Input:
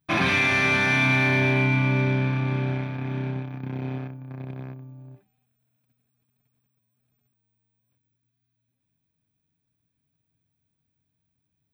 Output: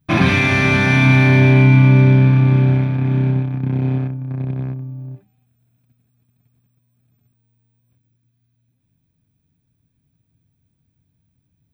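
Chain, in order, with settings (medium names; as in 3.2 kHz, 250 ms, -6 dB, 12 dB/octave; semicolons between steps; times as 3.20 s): bass shelf 300 Hz +12 dB; trim +3.5 dB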